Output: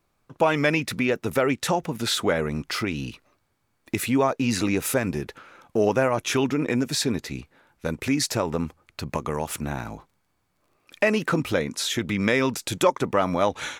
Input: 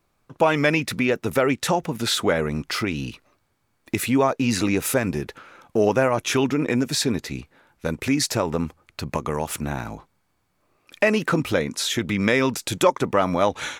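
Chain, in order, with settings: 9.07–11.47 crackle 22/s -50 dBFS; gain -2 dB

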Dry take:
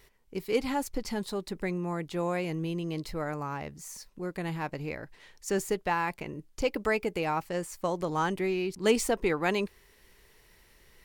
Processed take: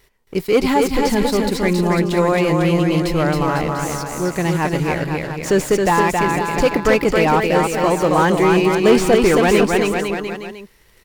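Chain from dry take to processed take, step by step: sample leveller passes 2; bouncing-ball echo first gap 0.27 s, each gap 0.85×, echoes 5; slew limiter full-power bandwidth 150 Hz; gain +7 dB

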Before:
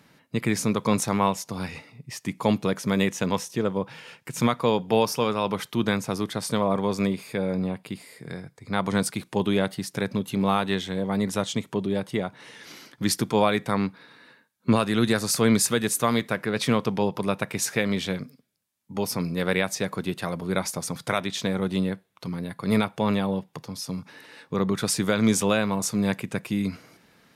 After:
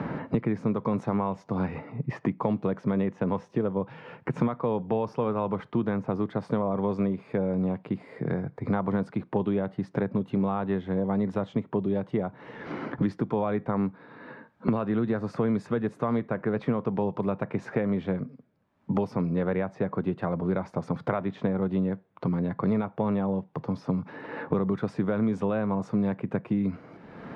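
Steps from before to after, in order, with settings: LPF 1100 Hz 12 dB/oct; limiter -14 dBFS, peak gain reduction 4.5 dB; three-band squash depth 100%; gain -1.5 dB

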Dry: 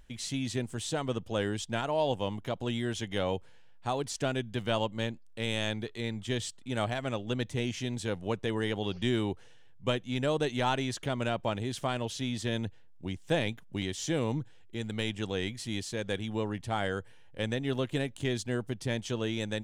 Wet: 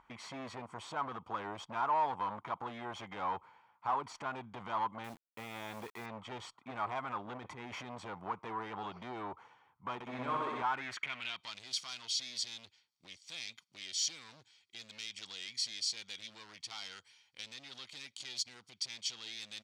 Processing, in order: high shelf 7700 Hz -6.5 dB; notch 3500 Hz, Q 11; comb 0.9 ms, depth 61%; 7.37–7.93 negative-ratio compressor -36 dBFS, ratio -1; limiter -27 dBFS, peak gain reduction 11 dB; hard clip -35.5 dBFS, distortion -9 dB; band-pass sweep 1000 Hz -> 4700 Hz, 10.59–11.55; 5.04–6.06 companded quantiser 6-bit; 9.94–10.62 flutter echo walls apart 10.9 m, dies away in 1.4 s; gain +11.5 dB

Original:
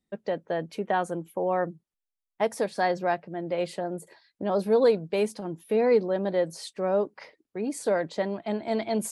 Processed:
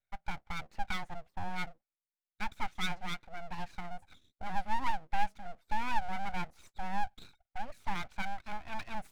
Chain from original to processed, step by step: double band-pass 840 Hz, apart 2.2 oct; full-wave rectifier; dynamic EQ 520 Hz, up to -5 dB, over -54 dBFS, Q 1.3; gain +4.5 dB

